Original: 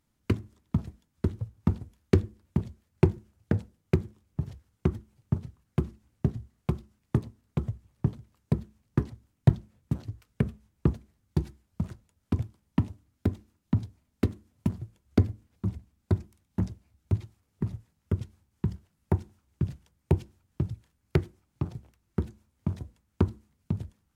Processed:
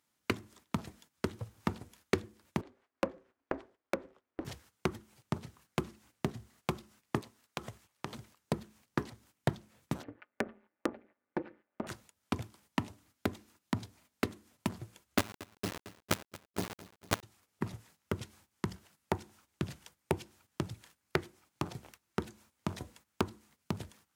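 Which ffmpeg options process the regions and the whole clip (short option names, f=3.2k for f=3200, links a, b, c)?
-filter_complex "[0:a]asettb=1/sr,asplit=3[a][b][c];[a]atrim=end=2.614[d];[b]atrim=start=2.61:end=4.45,asetpts=PTS-STARTPTS,afade=t=in:d=0.004:c=qsin,afade=t=out:st=1.836:d=0.004:c=qsin,lowpass=1.6k,aemphasis=mode=production:type=bsi,aeval=exprs='val(0)*sin(2*PI*170*n/s)':c=same[e];[c]atrim=start=4.446[f];[d][e]acrossfade=d=0.004:c1=hsin:c2=qsin[g];[g][f]acrossfade=d=0.004:c1=qsin:c2=hsin,asettb=1/sr,asplit=3[h][i][j];[h]atrim=end=7.214[k];[i]atrim=start=7.21:end=8.14,asetpts=PTS-STARTPTS,afade=t=in:d=0.004:c=qsin,afade=t=out:st=0.926:d=0.004:c=qsin,lowshelf=f=430:g=-10,acompressor=threshold=-38dB:ratio=2.5:attack=3.2:release=140:knee=1:detection=peak[l];[j]atrim=start=8.136[m];[k][l]acrossfade=d=0.004:c1=hsin:c2=qsin[n];[n][m]acrossfade=d=0.004:c1=qsin:c2=hsin,asettb=1/sr,asplit=3[o][p][q];[o]atrim=end=10.034[r];[p]atrim=start=10.03:end=11.87,asetpts=PTS-STARTPTS,afade=t=in:d=0.004:c=qsin,afade=t=out:st=1.836:d=0.004:c=qsin,highpass=f=140:w=0.5412,highpass=f=140:w=1.3066,equalizer=f=180:t=q:w=4:g=-5,equalizer=f=570:t=q:w=4:g=5,equalizer=f=1k:t=q:w=4:g=-4,lowpass=f=2.1k:w=0.5412,lowpass=f=2.1k:w=1.3066,aecho=1:1:3.4:0.81,atrim=end_sample=81144,tremolo=f=180:d=0.824[s];[q]atrim=start=11.866[t];[r][s]acrossfade=d=0.004:c1=hsin:c2=qsin[u];[u][t]acrossfade=d=0.004:c1=qsin:c2=hsin,asettb=1/sr,asplit=3[v][w][x];[v]atrim=end=15.184[y];[w]atrim=start=15.18:end=17.23,asetpts=PTS-STARTPTS,afade=t=in:d=0.004:c=qsin,afade=t=out:st=2.046:d=0.004:c=qsin,lowpass=f=1.3k:w=0.5412,lowpass=f=1.3k:w=1.3066,acrusher=bits=4:dc=4:mix=0:aa=0.000001,aecho=1:1:226|452|678|904:0.0668|0.0368|0.0202|0.0111,atrim=end_sample=90405[z];[x]atrim=start=17.226[aa];[y][z]acrossfade=d=0.004:c1=hsin:c2=qsin[ab];[ab][aa]acrossfade=d=0.004:c1=qsin:c2=hsin,agate=range=-12dB:threshold=-58dB:ratio=16:detection=peak,highpass=f=820:p=1,acompressor=threshold=-50dB:ratio=2,volume=14dB"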